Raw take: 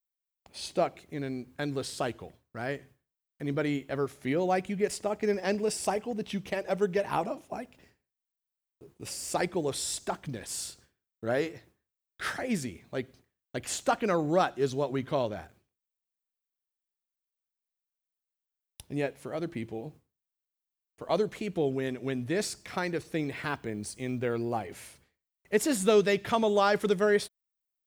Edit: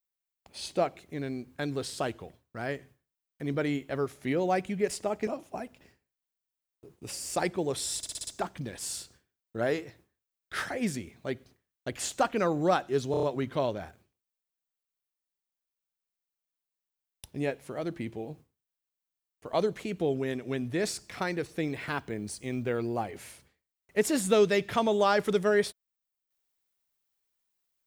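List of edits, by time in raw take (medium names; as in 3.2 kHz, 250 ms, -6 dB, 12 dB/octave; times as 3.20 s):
5.27–7.25 s: delete
9.95 s: stutter 0.06 s, 6 plays
14.79 s: stutter 0.03 s, 5 plays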